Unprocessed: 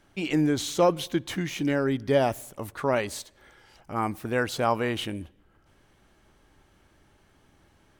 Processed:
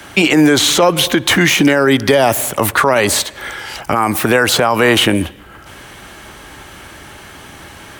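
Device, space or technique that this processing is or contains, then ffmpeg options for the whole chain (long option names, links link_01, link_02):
mastering chain: -filter_complex "[0:a]highpass=44,equalizer=frequency=5200:width_type=o:width=1:gain=-3.5,acrossover=split=130|330|1700|3900[link_01][link_02][link_03][link_04][link_05];[link_01]acompressor=threshold=-47dB:ratio=4[link_06];[link_02]acompressor=threshold=-37dB:ratio=4[link_07];[link_03]acompressor=threshold=-26dB:ratio=4[link_08];[link_04]acompressor=threshold=-47dB:ratio=4[link_09];[link_05]acompressor=threshold=-49dB:ratio=4[link_10];[link_06][link_07][link_08][link_09][link_10]amix=inputs=5:normalize=0,acompressor=threshold=-30dB:ratio=2.5,tiltshelf=frequency=830:gain=-5,alimiter=level_in=28dB:limit=-1dB:release=50:level=0:latency=1,volume=-1dB"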